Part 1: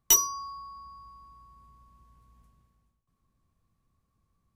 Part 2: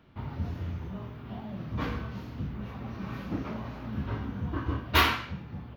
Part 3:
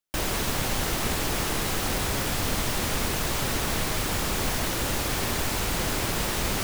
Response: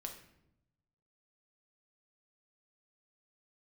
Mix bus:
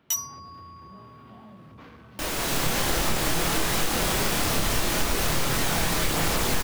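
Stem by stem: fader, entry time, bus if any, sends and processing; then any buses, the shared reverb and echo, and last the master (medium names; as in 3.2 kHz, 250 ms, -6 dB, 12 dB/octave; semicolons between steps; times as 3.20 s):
-7.0 dB, 0.00 s, no bus, no send, high-pass 1 kHz; level rider gain up to 8.5 dB
-1.5 dB, 0.00 s, bus A, no send, compression, threshold -37 dBFS, peak gain reduction 18.5 dB; saturation -38 dBFS, distortion -13 dB
-1.0 dB, 2.05 s, bus A, send -4.5 dB, level rider; chorus voices 2, 0.59 Hz, delay 28 ms, depth 3.7 ms
bus A: 0.0 dB, high-pass 170 Hz 6 dB/octave; compression, threshold -27 dBFS, peak gain reduction 8.5 dB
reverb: on, RT60 0.80 s, pre-delay 6 ms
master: compression, threshold -19 dBFS, peak gain reduction 4.5 dB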